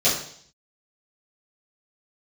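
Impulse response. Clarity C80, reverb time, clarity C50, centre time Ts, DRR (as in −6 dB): 9.0 dB, 0.60 s, 5.0 dB, 38 ms, −13.0 dB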